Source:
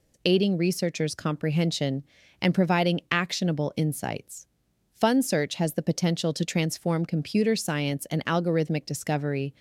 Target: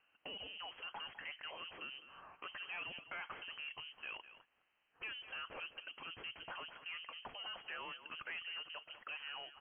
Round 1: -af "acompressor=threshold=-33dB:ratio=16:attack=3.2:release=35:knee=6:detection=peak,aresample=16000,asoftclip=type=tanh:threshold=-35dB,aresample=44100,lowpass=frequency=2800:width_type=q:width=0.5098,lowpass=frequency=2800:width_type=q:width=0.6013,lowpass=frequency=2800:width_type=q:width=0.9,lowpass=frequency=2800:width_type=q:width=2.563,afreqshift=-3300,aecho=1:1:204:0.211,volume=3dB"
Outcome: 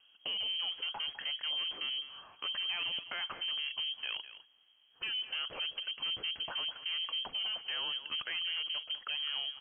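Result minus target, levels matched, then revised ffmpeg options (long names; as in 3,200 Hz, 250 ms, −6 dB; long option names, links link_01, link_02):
1,000 Hz band −9.5 dB; soft clipping: distortion −7 dB
-af "acompressor=threshold=-33dB:ratio=16:attack=3.2:release=35:knee=6:detection=peak,highpass=730,aresample=16000,asoftclip=type=tanh:threshold=-43dB,aresample=44100,lowpass=frequency=2800:width_type=q:width=0.5098,lowpass=frequency=2800:width_type=q:width=0.6013,lowpass=frequency=2800:width_type=q:width=0.9,lowpass=frequency=2800:width_type=q:width=2.563,afreqshift=-3300,aecho=1:1:204:0.211,volume=3dB"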